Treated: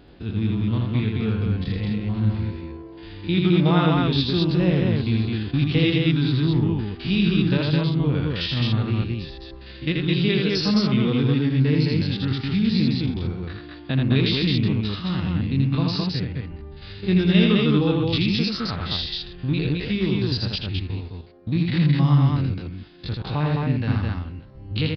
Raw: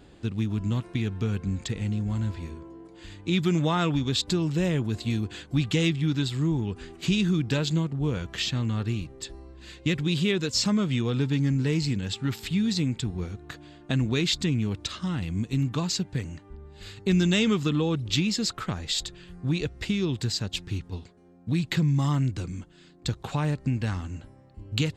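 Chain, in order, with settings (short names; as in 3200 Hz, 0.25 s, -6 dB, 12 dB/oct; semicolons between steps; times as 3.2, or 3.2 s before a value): stepped spectrum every 50 ms; downsampling 11025 Hz; loudspeakers at several distances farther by 28 m -3 dB, 73 m -2 dB; gain +3 dB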